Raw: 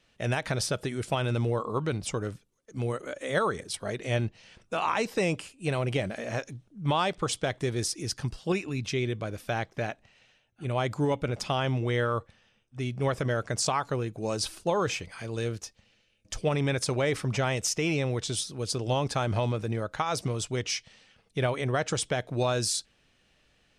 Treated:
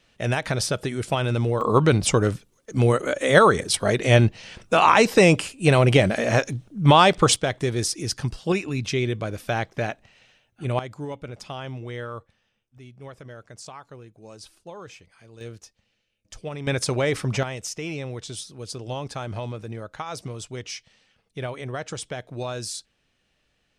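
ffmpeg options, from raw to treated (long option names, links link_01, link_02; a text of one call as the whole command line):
ffmpeg -i in.wav -af "asetnsamples=nb_out_samples=441:pad=0,asendcmd='1.61 volume volume 12dB;7.36 volume volume 5dB;10.79 volume volume -6.5dB;12.78 volume volume -13.5dB;15.41 volume volume -6.5dB;16.67 volume volume 4dB;17.43 volume volume -4dB',volume=4.5dB" out.wav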